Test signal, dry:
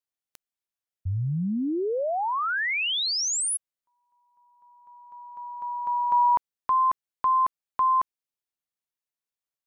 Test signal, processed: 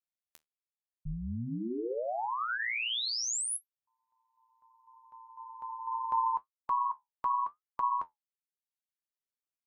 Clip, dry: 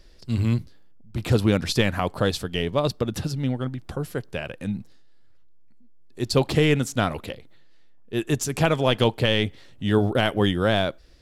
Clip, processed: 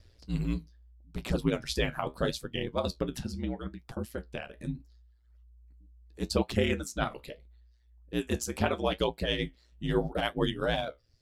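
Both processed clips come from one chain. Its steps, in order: reverb removal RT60 0.86 s; ring modulator 59 Hz; flange 0.77 Hz, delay 8.4 ms, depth 7.3 ms, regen -56%

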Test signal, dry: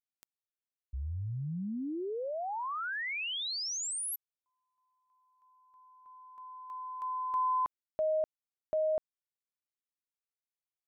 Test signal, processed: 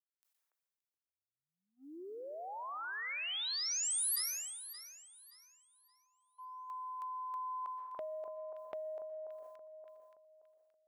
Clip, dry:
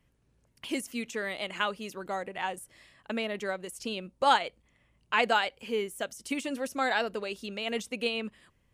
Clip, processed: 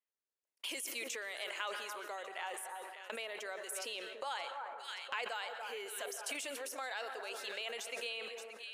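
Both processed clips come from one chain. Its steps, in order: HPF 380 Hz 24 dB/oct; high shelf 2700 Hz -5.5 dB; gate -50 dBFS, range -24 dB; short-mantissa float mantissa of 8-bit; echo with dull and thin repeats by turns 0.287 s, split 1500 Hz, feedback 54%, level -11.5 dB; plate-style reverb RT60 0.88 s, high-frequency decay 0.5×, pre-delay 0.11 s, DRR 14.5 dB; compressor 4:1, threshold -42 dBFS; tilt +3 dB/oct; sustainer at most 31 dB/s

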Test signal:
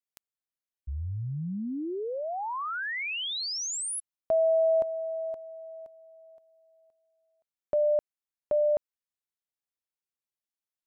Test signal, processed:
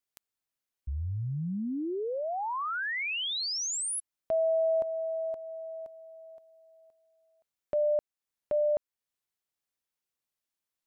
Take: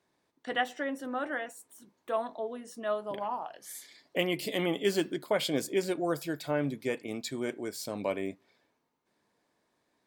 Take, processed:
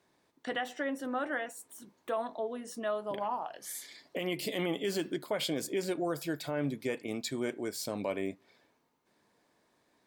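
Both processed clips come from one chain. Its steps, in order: in parallel at 0 dB: compressor, threshold -43 dBFS; on the sum: limiter -21 dBFS; gain -2 dB

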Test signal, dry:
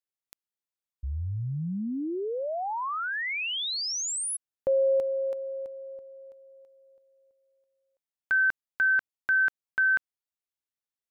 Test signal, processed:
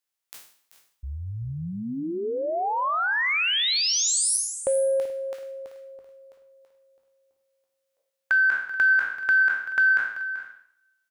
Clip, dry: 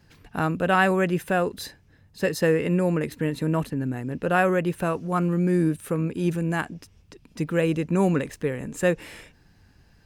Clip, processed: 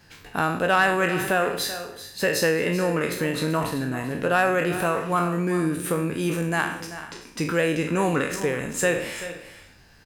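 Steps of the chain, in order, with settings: spectral trails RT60 0.53 s; low shelf 440 Hz -9.5 dB; in parallel at +2.5 dB: compressor, threshold -30 dBFS; on the sum: soft clip -8 dBFS; on a send: tapped delay 0.385/0.431 s -13.5/-18.5 dB; on the sum: two-slope reverb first 0.98 s, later 2.5 s, from -23 dB, DRR 19 dB

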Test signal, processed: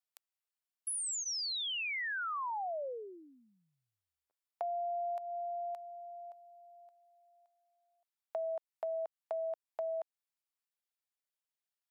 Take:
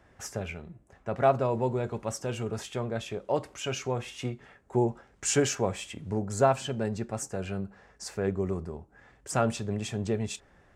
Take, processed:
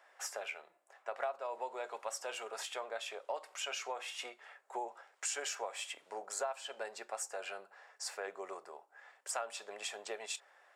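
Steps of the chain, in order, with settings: HPF 610 Hz 24 dB/oct; notch 6200 Hz, Q 15; compressor 5:1, threshold -36 dBFS

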